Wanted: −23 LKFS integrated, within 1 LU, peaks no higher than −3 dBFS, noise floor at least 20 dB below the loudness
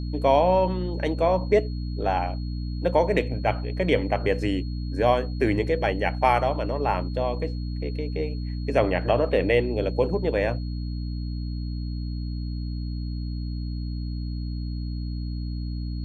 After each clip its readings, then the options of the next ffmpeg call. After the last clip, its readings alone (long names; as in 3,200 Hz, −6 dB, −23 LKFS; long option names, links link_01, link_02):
mains hum 60 Hz; hum harmonics up to 300 Hz; level of the hum −27 dBFS; interfering tone 4,300 Hz; level of the tone −48 dBFS; integrated loudness −26.0 LKFS; sample peak −6.5 dBFS; target loudness −23.0 LKFS
→ -af "bandreject=frequency=60:width_type=h:width=6,bandreject=frequency=120:width_type=h:width=6,bandreject=frequency=180:width_type=h:width=6,bandreject=frequency=240:width_type=h:width=6,bandreject=frequency=300:width_type=h:width=6"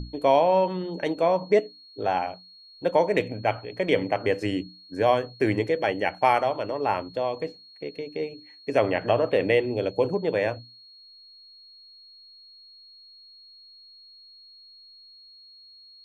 mains hum none found; interfering tone 4,300 Hz; level of the tone −48 dBFS
→ -af "bandreject=frequency=4300:width=30"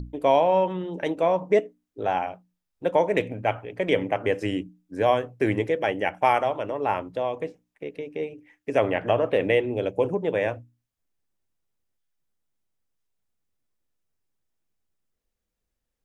interfering tone none found; integrated loudness −25.0 LKFS; sample peak −7.5 dBFS; target loudness −23.0 LKFS
→ -af "volume=2dB"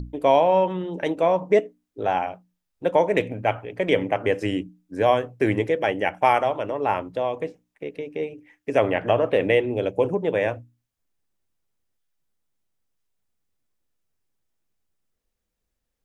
integrated loudness −23.0 LKFS; sample peak −5.5 dBFS; background noise floor −80 dBFS